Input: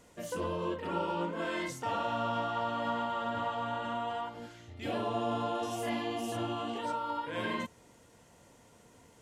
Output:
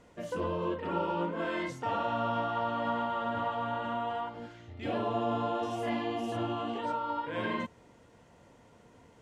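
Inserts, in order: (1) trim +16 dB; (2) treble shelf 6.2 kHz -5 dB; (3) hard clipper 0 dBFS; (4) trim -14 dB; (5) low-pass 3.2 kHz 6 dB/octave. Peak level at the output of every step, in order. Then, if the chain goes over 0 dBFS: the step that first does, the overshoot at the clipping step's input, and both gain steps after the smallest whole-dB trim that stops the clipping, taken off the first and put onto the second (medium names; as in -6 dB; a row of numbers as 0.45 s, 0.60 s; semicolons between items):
-5.0 dBFS, -5.0 dBFS, -5.0 dBFS, -19.0 dBFS, -19.5 dBFS; nothing clips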